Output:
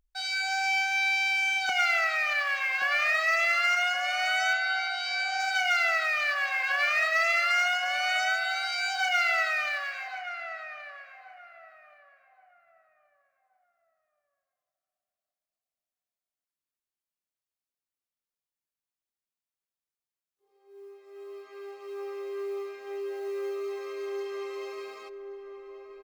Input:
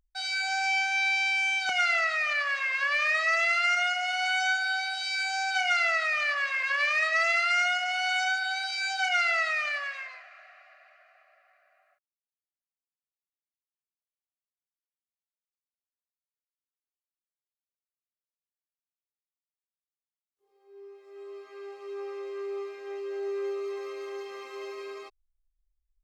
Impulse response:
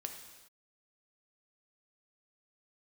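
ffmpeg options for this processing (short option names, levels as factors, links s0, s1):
-filter_complex "[0:a]acrusher=bits=8:mode=log:mix=0:aa=0.000001,asettb=1/sr,asplit=3[s0][s1][s2];[s0]atrim=end=4.534[s3];[s1]atrim=start=4.53:end=5.4,asetpts=PTS-STARTPTS,afade=t=in:d=0.004:c=qsin,afade=t=out:st=0.866:d=0.004:c=qsin,highpass=190,lowpass=5600[s4];[s2]atrim=start=5.396[s5];[s3][s4]acrossfade=d=0.004:c1=hsin:c2=qsin[s6];[s6][s5]acrossfade=d=0.004:c1=qsin:c2=hsin,asplit=2[s7][s8];[s8]adelay=1126,lowpass=f=1000:p=1,volume=0.501,asplit=2[s9][s10];[s10]adelay=1126,lowpass=f=1000:p=1,volume=0.37,asplit=2[s11][s12];[s12]adelay=1126,lowpass=f=1000:p=1,volume=0.37,asplit=2[s13][s14];[s14]adelay=1126,lowpass=f=1000:p=1,volume=0.37[s15];[s7][s9][s11][s13][s15]amix=inputs=5:normalize=0"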